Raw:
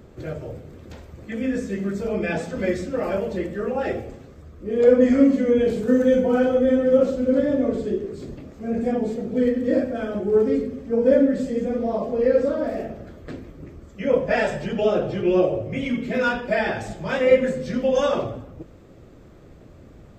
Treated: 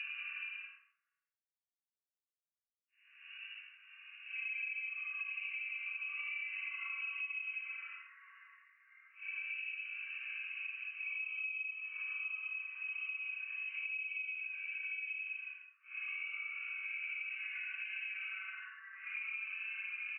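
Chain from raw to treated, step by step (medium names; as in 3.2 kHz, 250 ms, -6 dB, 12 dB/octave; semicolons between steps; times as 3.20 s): random holes in the spectrogram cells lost 73%; gated-style reverb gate 120 ms rising, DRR 0.5 dB; chorus voices 6, 0.47 Hz, delay 17 ms, depth 4.5 ms; level-controlled noise filter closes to 2.1 kHz, open at -24 dBFS; crossover distortion -51 dBFS; gain riding within 3 dB 0.5 s; doubling 13 ms -5 dB; frequency inversion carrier 2.8 kHz; Paulstretch 9.6×, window 0.05 s, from 8.22 s; rippled Chebyshev high-pass 1.1 kHz, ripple 9 dB; compression 10:1, threshold -44 dBFS, peak gain reduction 22.5 dB; trim +5 dB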